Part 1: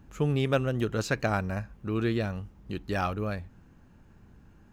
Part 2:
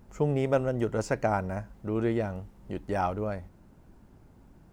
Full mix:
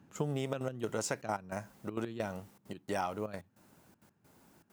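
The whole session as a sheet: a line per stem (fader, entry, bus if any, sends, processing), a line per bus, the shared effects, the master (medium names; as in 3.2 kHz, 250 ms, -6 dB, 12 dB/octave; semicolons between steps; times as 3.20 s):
-3.5 dB, 0.00 s, no send, high-pass 110 Hz 24 dB/octave; auto duck -12 dB, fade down 0.95 s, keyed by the second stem
-0.5 dB, 0.00 s, no send, trance gate "..xxxxx.x" 198 bpm -24 dB; high-pass 84 Hz; tilt EQ +3 dB/octave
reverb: none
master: compression 6:1, threshold -30 dBFS, peak gain reduction 8.5 dB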